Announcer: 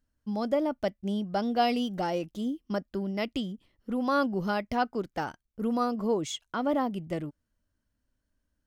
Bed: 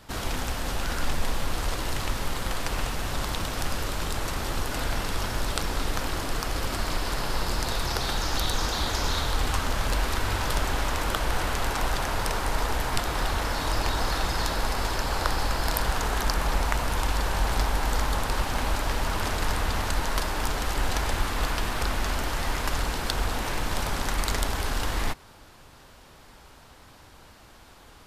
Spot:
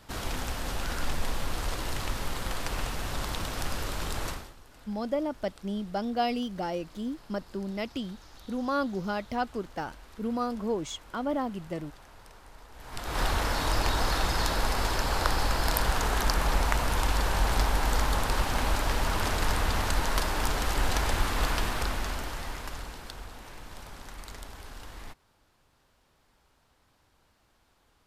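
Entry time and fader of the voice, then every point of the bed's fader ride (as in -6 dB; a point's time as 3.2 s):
4.60 s, -2.5 dB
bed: 4.3 s -3.5 dB
4.56 s -24.5 dB
12.71 s -24.5 dB
13.2 s -0.5 dB
21.59 s -0.5 dB
23.32 s -16.5 dB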